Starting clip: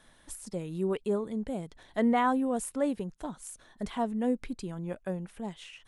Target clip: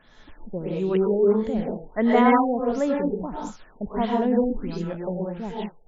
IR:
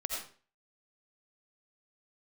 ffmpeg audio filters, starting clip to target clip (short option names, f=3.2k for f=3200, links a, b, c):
-filter_complex "[1:a]atrim=start_sample=2205,atrim=end_sample=6615,asetrate=29988,aresample=44100[a];[0:a][a]afir=irnorm=-1:irlink=0,afftfilt=real='re*lt(b*sr/1024,870*pow(7600/870,0.5+0.5*sin(2*PI*1.5*pts/sr)))':imag='im*lt(b*sr/1024,870*pow(7600/870,0.5+0.5*sin(2*PI*1.5*pts/sr)))':win_size=1024:overlap=0.75,volume=3.5dB"